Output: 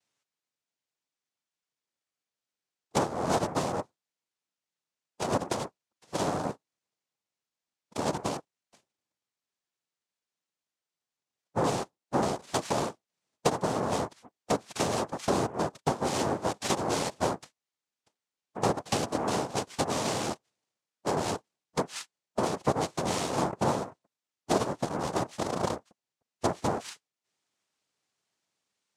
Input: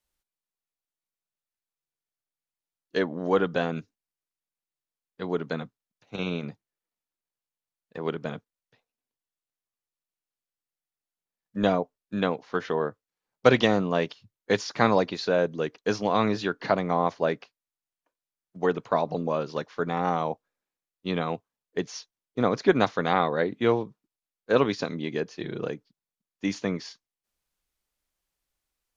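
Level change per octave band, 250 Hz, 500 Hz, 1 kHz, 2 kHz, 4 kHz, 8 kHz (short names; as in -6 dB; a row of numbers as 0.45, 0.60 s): -4.5 dB, -5.0 dB, -1.5 dB, -7.0 dB, -1.0 dB, n/a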